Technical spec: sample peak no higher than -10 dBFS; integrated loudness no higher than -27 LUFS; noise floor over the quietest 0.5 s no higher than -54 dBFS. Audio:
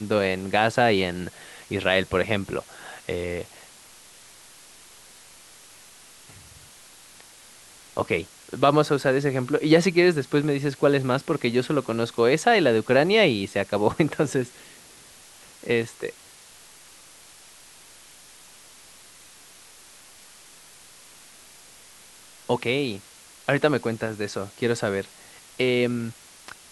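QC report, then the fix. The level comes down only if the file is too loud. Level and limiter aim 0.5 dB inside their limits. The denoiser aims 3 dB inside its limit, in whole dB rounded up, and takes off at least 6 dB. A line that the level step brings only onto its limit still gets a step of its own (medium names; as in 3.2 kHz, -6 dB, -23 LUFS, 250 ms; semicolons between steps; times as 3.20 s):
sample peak -5.0 dBFS: fail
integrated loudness -23.5 LUFS: fail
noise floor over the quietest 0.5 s -49 dBFS: fail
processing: noise reduction 6 dB, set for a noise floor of -49 dBFS; trim -4 dB; peak limiter -10.5 dBFS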